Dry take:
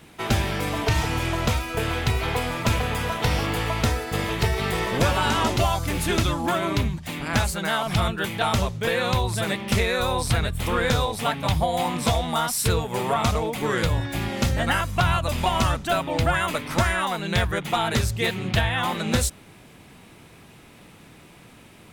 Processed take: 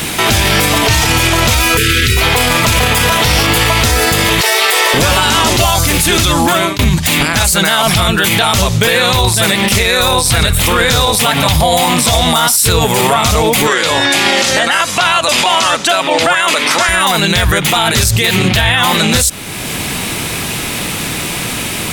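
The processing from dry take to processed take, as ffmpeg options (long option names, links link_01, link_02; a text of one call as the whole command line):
ffmpeg -i in.wav -filter_complex "[0:a]asettb=1/sr,asplit=3[link_01][link_02][link_03];[link_01]atrim=end=1.774[link_04];[link_02]atrim=start=1.77:end=2.17,asetpts=PTS-STARTPTS,afade=type=in:duration=0.004:curve=qsin,afade=type=out:start_time=0.396:duration=0.004:curve=qsin,asuperstop=centerf=780:order=8:qfactor=0.86[link_05];[link_03]atrim=start=2.166[link_06];[link_04][link_05]acrossfade=duration=0.004:curve1=hsin:curve2=qsin[link_07];[link_07][link_06]acrossfade=duration=0.004:curve1=qsin:curve2=hsin,asettb=1/sr,asplit=3[link_08][link_09][link_10];[link_08]atrim=end=4.414[link_11];[link_09]atrim=start=4.41:end=4.94,asetpts=PTS-STARTPTS,afade=type=in:duration=0.004:curve=qsin,afade=type=out:start_time=0.526:duration=0.004:curve=qsin,highpass=frequency=450:width=0.5412,highpass=frequency=450:width=1.3066[link_12];[link_10]atrim=start=4.936[link_13];[link_11][link_12]acrossfade=duration=0.004:curve1=hsin:curve2=qsin[link_14];[link_14][link_13]acrossfade=duration=0.004:curve1=qsin:curve2=hsin,asettb=1/sr,asplit=3[link_15][link_16][link_17];[link_15]atrim=end=8.794[link_18];[link_16]atrim=start=8.79:end=12.56,asetpts=PTS-STARTPTS,afade=type=in:duration=0.004:curve=qsin,afade=type=out:start_time=3.766:duration=0.004:curve=qsin,aecho=1:1:117:0.126,atrim=end_sample=166257[link_19];[link_17]atrim=start=12.556[link_20];[link_18][link_19]acrossfade=duration=0.004:curve1=hsin:curve2=qsin[link_21];[link_21][link_20]acrossfade=duration=0.004:curve1=qsin:curve2=hsin,asettb=1/sr,asplit=3[link_22][link_23][link_24];[link_22]atrim=end=13.674[link_25];[link_23]atrim=start=13.67:end=16.89,asetpts=PTS-STARTPTS,afade=type=in:duration=0.004:curve=qsin,afade=type=out:start_time=3.216:duration=0.004:curve=qsin,highpass=350,lowpass=8000[link_26];[link_24]atrim=start=16.886[link_27];[link_25][link_26]acrossfade=duration=0.004:curve1=hsin:curve2=qsin[link_28];[link_28][link_27]acrossfade=duration=0.004:curve1=qsin:curve2=hsin,asplit=2[link_29][link_30];[link_29]atrim=end=6.79,asetpts=PTS-STARTPTS,afade=type=out:start_time=6.33:duration=0.46[link_31];[link_30]atrim=start=6.79,asetpts=PTS-STARTPTS,afade=type=in:duration=0.004:curve=hsin[link_32];[link_31][link_32]concat=n=2:v=0:a=1,highshelf=frequency=2400:gain=11.5,acompressor=threshold=-43dB:ratio=1.5,alimiter=level_in=28dB:limit=-1dB:release=50:level=0:latency=1,volume=-1dB" out.wav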